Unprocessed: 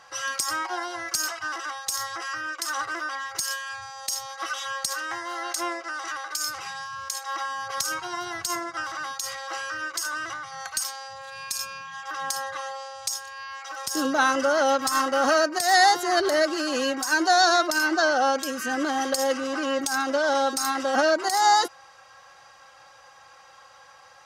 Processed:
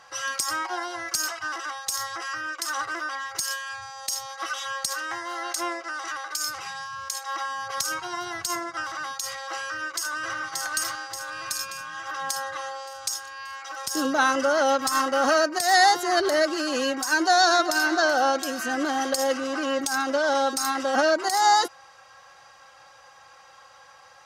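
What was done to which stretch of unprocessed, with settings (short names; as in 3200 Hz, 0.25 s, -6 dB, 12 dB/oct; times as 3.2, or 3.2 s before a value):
9.65–10.37 echo throw 0.58 s, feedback 60%, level -2 dB
17.12–17.88 echo throw 0.38 s, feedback 60%, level -14.5 dB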